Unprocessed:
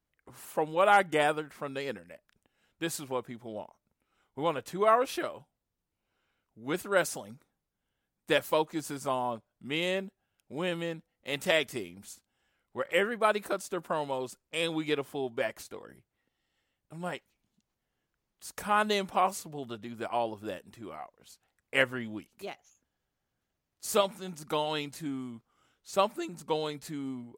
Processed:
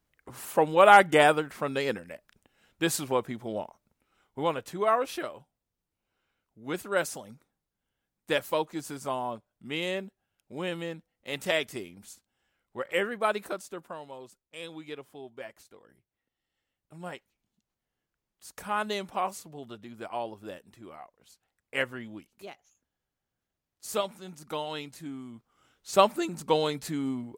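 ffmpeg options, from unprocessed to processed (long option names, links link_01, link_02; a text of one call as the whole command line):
ffmpeg -i in.wav -af "volume=23dB,afade=type=out:start_time=3.49:duration=1.34:silence=0.421697,afade=type=out:start_time=13.37:duration=0.62:silence=0.334965,afade=type=in:start_time=15.78:duration=1.21:silence=0.446684,afade=type=in:start_time=25.25:duration=0.67:silence=0.334965" out.wav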